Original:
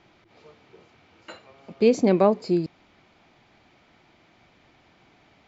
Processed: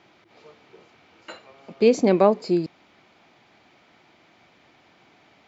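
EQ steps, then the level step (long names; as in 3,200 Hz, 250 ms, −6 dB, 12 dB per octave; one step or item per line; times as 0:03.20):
high-pass filter 200 Hz 6 dB per octave
+2.5 dB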